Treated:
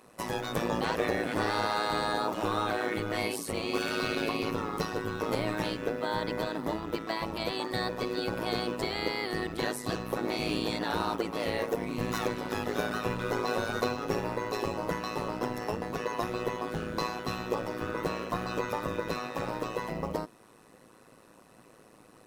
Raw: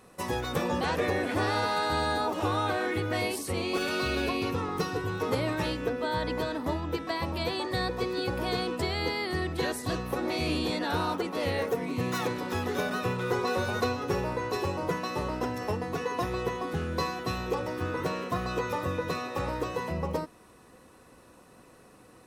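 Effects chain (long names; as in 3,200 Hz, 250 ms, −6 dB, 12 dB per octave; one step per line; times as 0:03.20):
high-pass filter 110 Hz 24 dB per octave
amplitude modulation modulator 110 Hz, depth 75%
in parallel at −10 dB: floating-point word with a short mantissa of 2 bits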